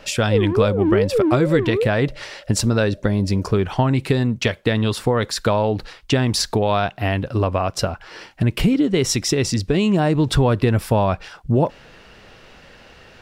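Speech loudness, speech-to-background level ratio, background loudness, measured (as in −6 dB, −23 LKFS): −20.0 LKFS, 1.0 dB, −21.0 LKFS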